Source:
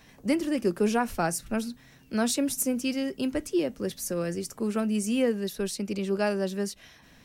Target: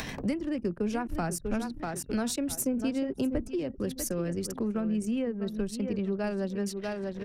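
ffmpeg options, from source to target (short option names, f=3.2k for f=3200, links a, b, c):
-filter_complex "[0:a]aecho=1:1:644|1288|1932:0.266|0.0692|0.018,acompressor=mode=upward:threshold=-35dB:ratio=2.5,asettb=1/sr,asplit=3[a][b][c];[a]atrim=end=2.504[d];[b]atrim=start=2.5:end=3.48,asetpts=PTS-STARTPTS,afade=t=in:d=0.004:c=qsin,afade=t=out:st=0.976:d=0.004:c=qsin,equalizer=f=480:w=0.39:g=8[e];[c]atrim=start=3.476[f];[d][e]acrossfade=d=0.004:c1=hsin:c2=qsin[g];[g][f]acrossfade=d=0.004:c1=qsin:c2=hsin,acrossover=split=130[h][i];[i]acompressor=threshold=-38dB:ratio=6[j];[h][j]amix=inputs=2:normalize=0,asettb=1/sr,asplit=3[k][l][m];[k]atrim=end=4.514[n];[l]atrim=start=4.51:end=6.24,asetpts=PTS-STARTPTS,afade=t=in:d=0.004:c=qsin,afade=t=out:st=1.726:d=0.004:c=qsin,highshelf=f=2.5k:g=-5.5[o];[m]atrim=start=6.236[p];[n][o]acrossfade=d=0.004:c1=hsin:c2=qsin[q];[q][p]acrossfade=d=0.004:c1=qsin:c2=hsin,anlmdn=0.0158,volume=7.5dB"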